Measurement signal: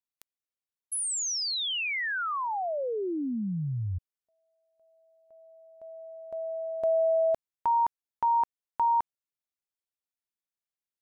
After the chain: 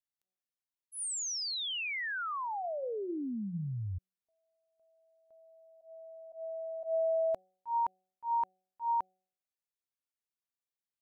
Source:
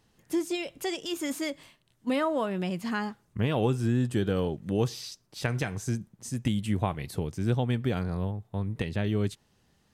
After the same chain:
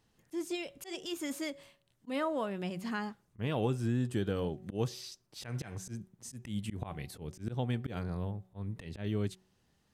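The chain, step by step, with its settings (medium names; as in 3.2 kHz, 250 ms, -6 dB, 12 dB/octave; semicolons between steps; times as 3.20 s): de-hum 186.5 Hz, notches 4; slow attack 110 ms; trim -5.5 dB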